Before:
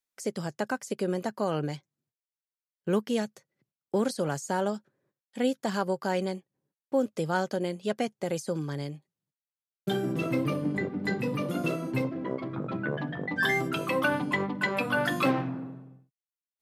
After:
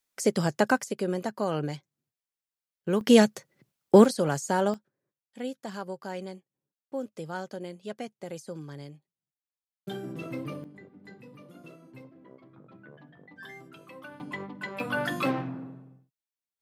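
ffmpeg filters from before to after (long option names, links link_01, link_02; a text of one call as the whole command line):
ffmpeg -i in.wav -af "asetnsamples=nb_out_samples=441:pad=0,asendcmd='0.84 volume volume 0dB;3.01 volume volume 11.5dB;4.05 volume volume 3dB;4.74 volume volume -8dB;10.64 volume volume -19.5dB;14.2 volume volume -9dB;14.8 volume volume -2.5dB',volume=7.5dB" out.wav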